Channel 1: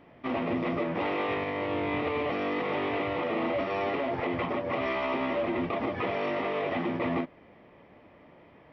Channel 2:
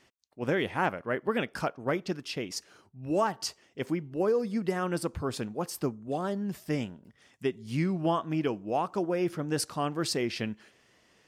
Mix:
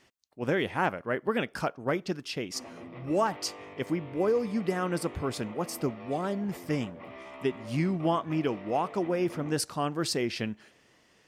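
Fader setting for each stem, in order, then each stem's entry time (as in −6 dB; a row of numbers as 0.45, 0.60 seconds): −15.5, +0.5 decibels; 2.30, 0.00 seconds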